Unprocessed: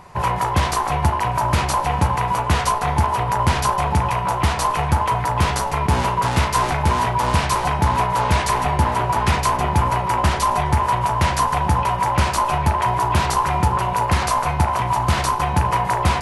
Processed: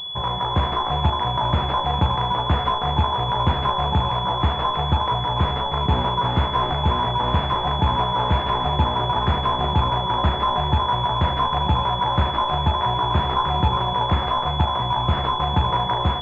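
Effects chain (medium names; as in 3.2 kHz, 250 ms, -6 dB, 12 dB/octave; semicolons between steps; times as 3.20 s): level rider gain up to 4.5 dB; class-D stage that switches slowly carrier 3.4 kHz; trim -4.5 dB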